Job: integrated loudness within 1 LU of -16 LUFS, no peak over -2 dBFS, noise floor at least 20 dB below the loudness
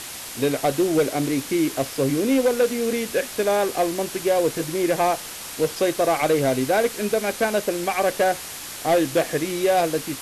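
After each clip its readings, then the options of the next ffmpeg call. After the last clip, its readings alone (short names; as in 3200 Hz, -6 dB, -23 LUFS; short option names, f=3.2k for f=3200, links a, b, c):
noise floor -35 dBFS; noise floor target -43 dBFS; loudness -22.5 LUFS; peak -11.0 dBFS; loudness target -16.0 LUFS
-> -af "afftdn=nr=8:nf=-35"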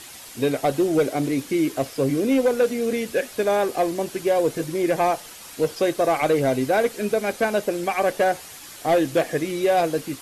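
noise floor -41 dBFS; noise floor target -43 dBFS
-> -af "afftdn=nr=6:nf=-41"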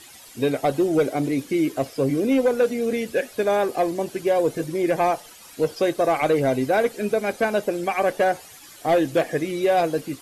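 noise floor -46 dBFS; loudness -22.5 LUFS; peak -12.0 dBFS; loudness target -16.0 LUFS
-> -af "volume=6.5dB"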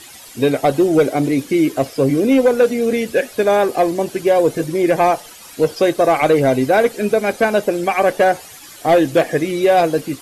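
loudness -16.0 LUFS; peak -5.5 dBFS; noise floor -39 dBFS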